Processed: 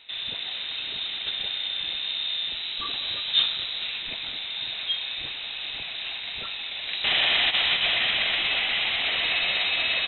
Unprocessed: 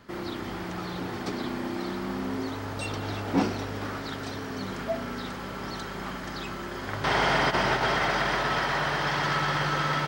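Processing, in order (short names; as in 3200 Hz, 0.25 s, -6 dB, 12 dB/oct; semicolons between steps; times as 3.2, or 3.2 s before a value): air absorption 77 m; inverted band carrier 3900 Hz; gain +2 dB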